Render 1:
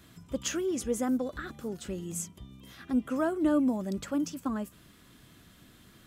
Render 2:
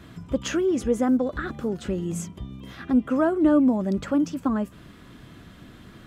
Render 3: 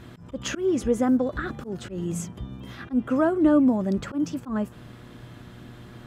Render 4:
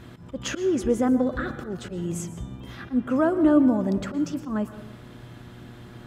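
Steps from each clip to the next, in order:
LPF 1900 Hz 6 dB/oct; in parallel at -1.5 dB: compressor, threshold -38 dBFS, peak gain reduction 15.5 dB; on the sum: gain +6 dB
buzz 120 Hz, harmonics 15, -47 dBFS -7 dB/oct; auto swell 0.118 s
plate-style reverb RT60 0.9 s, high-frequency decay 0.5×, pre-delay 0.105 s, DRR 12 dB

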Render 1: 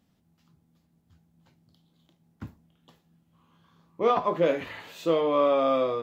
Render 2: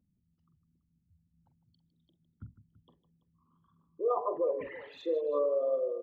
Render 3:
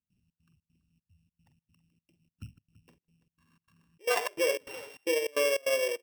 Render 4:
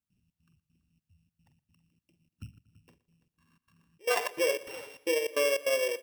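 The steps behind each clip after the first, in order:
formant sharpening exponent 3; tapped delay 45/156/333 ms -12/-13.5/-18 dB; gain -7 dB
sample sorter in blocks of 16 samples; step gate ".xx.xx.xxx" 151 bpm -24 dB; gain +2.5 dB
feedback echo 0.118 s, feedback 54%, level -19.5 dB

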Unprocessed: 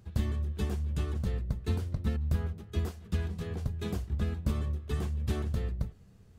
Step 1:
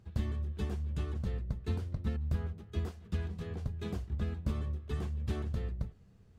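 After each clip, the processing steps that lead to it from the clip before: high shelf 8000 Hz -10 dB; gain -3.5 dB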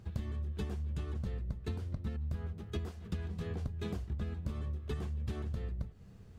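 compressor 6:1, threshold -41 dBFS, peak gain reduction 13.5 dB; gain +6.5 dB

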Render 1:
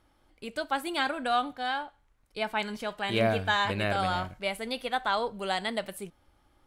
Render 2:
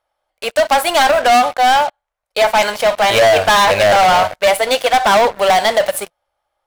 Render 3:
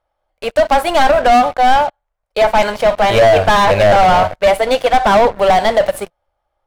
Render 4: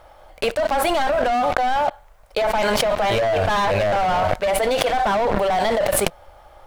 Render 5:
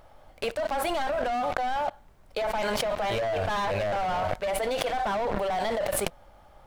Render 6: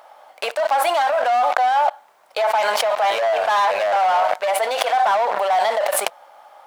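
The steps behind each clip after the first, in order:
resonant low shelf 410 Hz -13.5 dB, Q 3; sample leveller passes 5; gain +3.5 dB
tilt -2.5 dB/oct
sample leveller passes 1; fast leveller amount 100%; gain -13.5 dB
added noise brown -47 dBFS; gain -8.5 dB
resonant high-pass 770 Hz, resonance Q 1.6; gain +8 dB

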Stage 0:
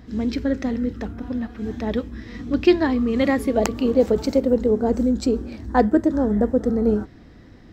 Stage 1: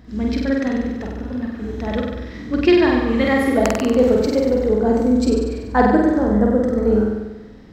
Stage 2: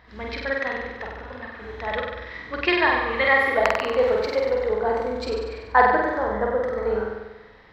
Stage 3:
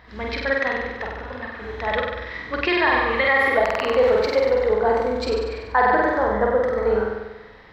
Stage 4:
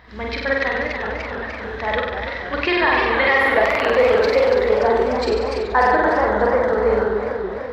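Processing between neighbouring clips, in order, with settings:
dynamic EQ 1600 Hz, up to +5 dB, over -36 dBFS, Q 0.79; flutter echo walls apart 8.2 m, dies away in 1.1 s; gain -1 dB
graphic EQ 250/500/1000/2000/4000/8000 Hz -11/+6/+12/+12/+9/-8 dB; gain -10.5 dB
maximiser +11.5 dB; gain -7.5 dB
warbling echo 0.291 s, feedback 64%, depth 184 cents, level -7 dB; gain +1.5 dB

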